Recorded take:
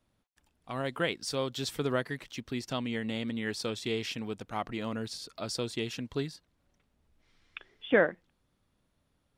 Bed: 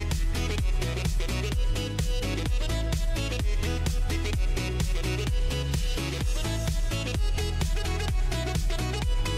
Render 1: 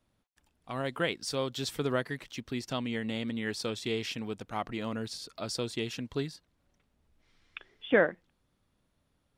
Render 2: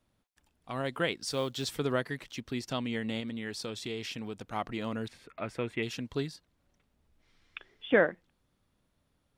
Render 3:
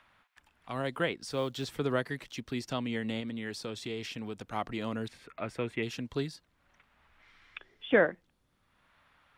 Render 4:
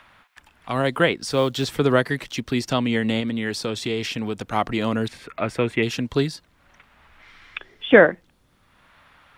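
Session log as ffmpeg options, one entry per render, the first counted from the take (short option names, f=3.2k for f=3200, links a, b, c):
-af anull
-filter_complex "[0:a]asettb=1/sr,asplit=3[a][b][c];[a]atrim=end=1.304[d];[b]atrim=start=1.3:end=1.71,asetpts=PTS-STARTPTS,afade=t=in:d=0.004:c=qsin,afade=t=out:st=0.406:d=0.004:c=qsin,acrusher=bits=7:mode=log:mix=0:aa=0.000001[e];[c]atrim=start=1.706[f];[d][e]acrossfade=d=0.004:c1=hsin:c2=qsin[g];[g][f]acrossfade=d=0.004:c1=qsin:c2=hsin,asettb=1/sr,asplit=3[h][i][j];[h]atrim=end=3.204[k];[i]atrim=start=3.2:end=4.44,asetpts=PTS-STARTPTS,afade=t=in:d=0.004:c=qsin,afade=t=out:st=1.236:d=0.004:c=qsin,acompressor=threshold=-36dB:ratio=2:attack=3.2:release=140:knee=1:detection=peak[l];[j]atrim=start=4.436[m];[k][l]acrossfade=d=0.004:c1=hsin:c2=qsin[n];[n][m]acrossfade=d=0.004:c1=qsin:c2=hsin,asettb=1/sr,asplit=3[o][p][q];[o]atrim=end=5.084[r];[p]atrim=start=5.08:end=5.83,asetpts=PTS-STARTPTS,afade=t=in:d=0.004:c=qsin,afade=t=out:st=0.746:d=0.004:c=qsin,highshelf=f=3.2k:t=q:w=3:g=-13.5[s];[q]atrim=start=5.826[t];[r][s]acrossfade=d=0.004:c1=hsin:c2=qsin[u];[u][t]acrossfade=d=0.004:c1=qsin:c2=hsin"
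-filter_complex "[0:a]acrossover=split=390|930|2700[a][b][c][d];[c]acompressor=mode=upward:threshold=-49dB:ratio=2.5[e];[d]alimiter=level_in=10dB:limit=-24dB:level=0:latency=1:release=314,volume=-10dB[f];[a][b][e][f]amix=inputs=4:normalize=0"
-af "volume=12dB,alimiter=limit=-1dB:level=0:latency=1"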